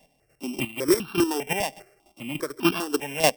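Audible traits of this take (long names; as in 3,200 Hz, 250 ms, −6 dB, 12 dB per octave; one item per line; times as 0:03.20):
a buzz of ramps at a fixed pitch in blocks of 16 samples
chopped level 3.4 Hz, depth 65%, duty 20%
notches that jump at a steady rate 5 Hz 360–2,000 Hz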